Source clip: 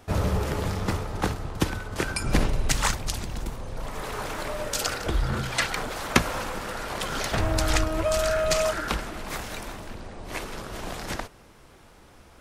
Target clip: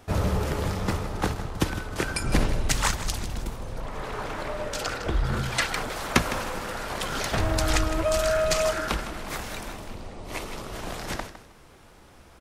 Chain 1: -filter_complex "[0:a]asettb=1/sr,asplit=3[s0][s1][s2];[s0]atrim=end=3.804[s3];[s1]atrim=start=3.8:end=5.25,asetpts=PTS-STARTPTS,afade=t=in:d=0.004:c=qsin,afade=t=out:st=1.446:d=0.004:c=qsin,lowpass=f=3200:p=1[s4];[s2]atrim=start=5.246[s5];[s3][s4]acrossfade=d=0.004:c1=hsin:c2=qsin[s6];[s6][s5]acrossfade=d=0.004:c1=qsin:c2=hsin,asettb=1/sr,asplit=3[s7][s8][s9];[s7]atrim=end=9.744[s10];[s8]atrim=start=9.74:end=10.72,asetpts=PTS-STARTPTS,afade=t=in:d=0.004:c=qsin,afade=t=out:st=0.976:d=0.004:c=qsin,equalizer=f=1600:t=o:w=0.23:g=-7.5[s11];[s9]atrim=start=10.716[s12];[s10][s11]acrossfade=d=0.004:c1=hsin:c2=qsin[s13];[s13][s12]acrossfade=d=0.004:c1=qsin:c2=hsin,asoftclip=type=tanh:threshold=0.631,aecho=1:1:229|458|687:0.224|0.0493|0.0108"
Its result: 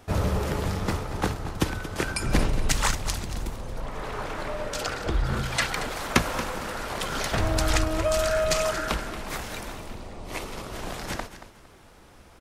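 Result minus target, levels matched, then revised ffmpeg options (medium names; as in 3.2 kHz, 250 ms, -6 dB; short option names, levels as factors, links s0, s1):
echo 71 ms late
-filter_complex "[0:a]asettb=1/sr,asplit=3[s0][s1][s2];[s0]atrim=end=3.804[s3];[s1]atrim=start=3.8:end=5.25,asetpts=PTS-STARTPTS,afade=t=in:d=0.004:c=qsin,afade=t=out:st=1.446:d=0.004:c=qsin,lowpass=f=3200:p=1[s4];[s2]atrim=start=5.246[s5];[s3][s4]acrossfade=d=0.004:c1=hsin:c2=qsin[s6];[s6][s5]acrossfade=d=0.004:c1=qsin:c2=hsin,asettb=1/sr,asplit=3[s7][s8][s9];[s7]atrim=end=9.744[s10];[s8]atrim=start=9.74:end=10.72,asetpts=PTS-STARTPTS,afade=t=in:d=0.004:c=qsin,afade=t=out:st=0.976:d=0.004:c=qsin,equalizer=f=1600:t=o:w=0.23:g=-7.5[s11];[s9]atrim=start=10.716[s12];[s10][s11]acrossfade=d=0.004:c1=hsin:c2=qsin[s13];[s13][s12]acrossfade=d=0.004:c1=qsin:c2=hsin,asoftclip=type=tanh:threshold=0.631,aecho=1:1:158|316|474:0.224|0.0493|0.0108"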